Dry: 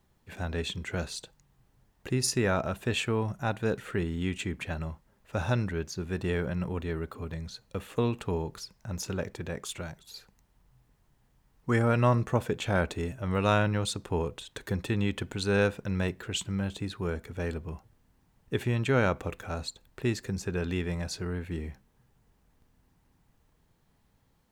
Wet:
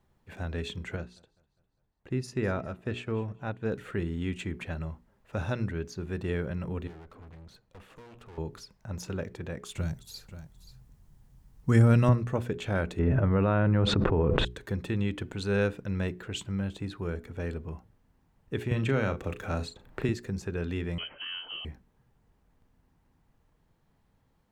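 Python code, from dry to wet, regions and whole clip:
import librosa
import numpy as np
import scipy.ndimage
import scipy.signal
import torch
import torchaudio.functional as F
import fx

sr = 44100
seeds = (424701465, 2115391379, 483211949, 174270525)

y = fx.chain(x, sr, fx.high_shelf(hz=5000.0, db=-10.0),
    fx.echo_feedback(ms=202, feedback_pct=52, wet_db=-21),
    fx.upward_expand(threshold_db=-46.0, expansion=1.5), at=(0.96, 3.72))
y = fx.chain(y, sr, fx.block_float(bits=7),
    fx.high_shelf(hz=5000.0, db=-6.0),
    fx.tube_stage(drive_db=46.0, bias=0.75), at=(6.87, 8.38))
y = fx.chain(y, sr, fx.bass_treble(bass_db=11, treble_db=11),
    fx.echo_single(ms=531, db=-13.5), at=(9.75, 12.09))
y = fx.chain(y, sr, fx.lowpass(hz=1600.0, slope=12),
    fx.env_flatten(amount_pct=100), at=(12.99, 14.45))
y = fx.chain(y, sr, fx.doubler(ms=36.0, db=-9.0),
    fx.band_squash(depth_pct=70), at=(18.71, 20.09))
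y = fx.chain(y, sr, fx.cvsd(bps=64000),
    fx.peak_eq(hz=240.0, db=-12.5, octaves=0.56),
    fx.freq_invert(carrier_hz=3100), at=(20.98, 21.65))
y = fx.high_shelf(y, sr, hz=3000.0, db=-8.0)
y = fx.hum_notches(y, sr, base_hz=60, count=7)
y = fx.dynamic_eq(y, sr, hz=860.0, q=1.3, threshold_db=-45.0, ratio=4.0, max_db=-5)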